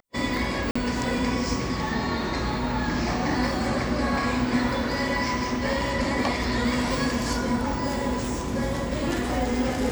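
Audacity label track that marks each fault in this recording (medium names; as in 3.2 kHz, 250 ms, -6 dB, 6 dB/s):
0.710000	0.760000	dropout 45 ms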